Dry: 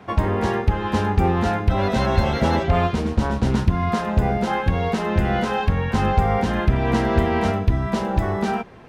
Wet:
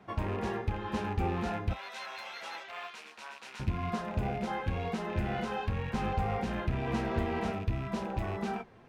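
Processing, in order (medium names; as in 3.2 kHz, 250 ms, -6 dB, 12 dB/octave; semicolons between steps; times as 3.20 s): rattle on loud lows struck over -24 dBFS, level -24 dBFS; 1.73–3.60 s: high-pass 1.3 kHz 12 dB/octave; flange 2 Hz, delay 4.7 ms, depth 4.8 ms, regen -49%; trim -8.5 dB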